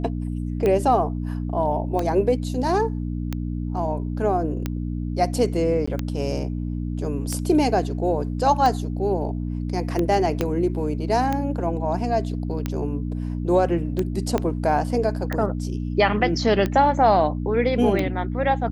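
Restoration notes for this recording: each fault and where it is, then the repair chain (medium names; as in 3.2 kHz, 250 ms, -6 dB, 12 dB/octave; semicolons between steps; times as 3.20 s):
hum 60 Hz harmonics 5 -27 dBFS
tick 45 rpm -12 dBFS
5.86–5.88 s: dropout 15 ms
10.41 s: pop -9 dBFS
14.38 s: pop -10 dBFS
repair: de-click; de-hum 60 Hz, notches 5; interpolate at 5.86 s, 15 ms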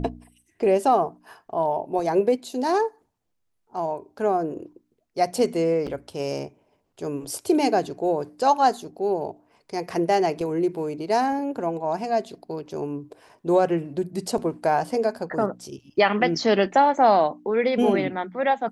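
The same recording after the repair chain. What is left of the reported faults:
10.41 s: pop
14.38 s: pop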